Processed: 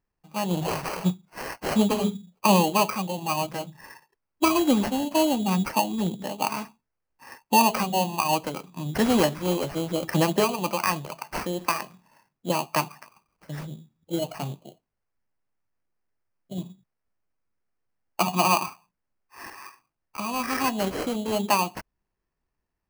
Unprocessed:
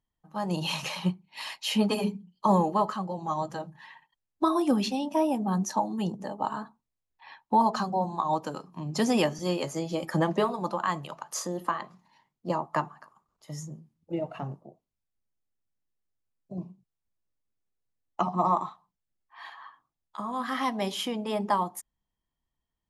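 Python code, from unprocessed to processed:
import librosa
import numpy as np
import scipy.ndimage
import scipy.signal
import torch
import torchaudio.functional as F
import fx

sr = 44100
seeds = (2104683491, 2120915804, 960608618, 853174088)

y = fx.sample_hold(x, sr, seeds[0], rate_hz=3600.0, jitter_pct=0)
y = y * librosa.db_to_amplitude(3.5)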